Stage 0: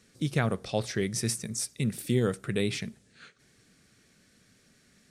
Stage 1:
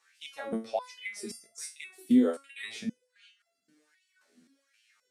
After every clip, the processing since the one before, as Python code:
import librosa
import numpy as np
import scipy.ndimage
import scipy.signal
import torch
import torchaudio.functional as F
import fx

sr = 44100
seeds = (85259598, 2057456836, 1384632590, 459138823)

y = fx.filter_lfo_highpass(x, sr, shape='sine', hz=1.3, low_hz=220.0, high_hz=2900.0, q=6.0)
y = fx.resonator_held(y, sr, hz=3.8, low_hz=83.0, high_hz=680.0)
y = F.gain(torch.from_numpy(y), 2.0).numpy()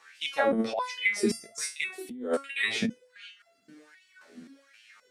y = fx.high_shelf(x, sr, hz=4300.0, db=-11.5)
y = fx.over_compress(y, sr, threshold_db=-37.0, ratio=-1.0)
y = F.gain(torch.from_numpy(y), 8.5).numpy()